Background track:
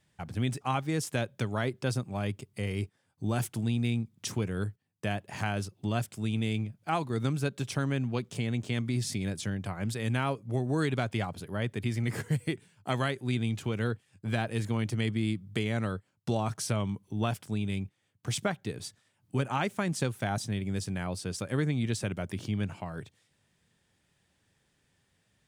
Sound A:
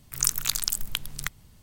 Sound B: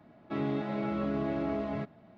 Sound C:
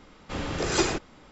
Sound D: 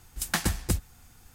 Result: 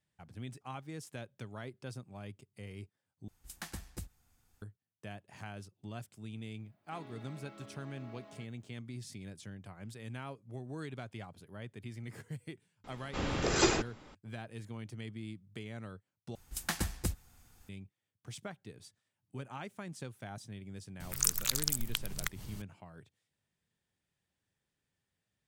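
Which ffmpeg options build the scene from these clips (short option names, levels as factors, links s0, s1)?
-filter_complex "[4:a]asplit=2[s0][s1];[0:a]volume=0.2[s2];[2:a]aemphasis=mode=production:type=riaa[s3];[1:a]acompressor=mode=upward:threshold=0.0447:ratio=2.5:attack=3.2:release=140:knee=2.83:detection=peak[s4];[s2]asplit=3[s5][s6][s7];[s5]atrim=end=3.284[s8];[s0]atrim=end=1.34,asetpts=PTS-STARTPTS,volume=0.141[s9];[s6]atrim=start=4.616:end=16.354[s10];[s1]atrim=end=1.34,asetpts=PTS-STARTPTS,volume=0.422[s11];[s7]atrim=start=17.686[s12];[s3]atrim=end=2.17,asetpts=PTS-STARTPTS,volume=0.141,afade=t=in:d=0.004:c=hsin,afade=t=out:st=2.166:d=0.004:c=hsin,adelay=6600[s13];[3:a]atrim=end=1.31,asetpts=PTS-STARTPTS,volume=0.708,afade=t=in:d=0.004:c=hsin,afade=t=out:st=1.306:d=0.004:c=hsin,adelay=566244S[s14];[s4]atrim=end=1.62,asetpts=PTS-STARTPTS,volume=0.531,afade=t=in:d=0.004:c=hsin,afade=t=out:st=1.616:d=0.004:c=hsin,adelay=926100S[s15];[s8][s9]acrossfade=d=0.004:c1=hsin:c2=hsin[s16];[s16][s10]acrossfade=d=0.004:c1=hsin:c2=hsin[s17];[s17][s11]acrossfade=d=0.004:c1=hsin:c2=hsin[s18];[s18][s12]acrossfade=d=0.004:c1=hsin:c2=hsin[s19];[s19][s13][s14][s15]amix=inputs=4:normalize=0"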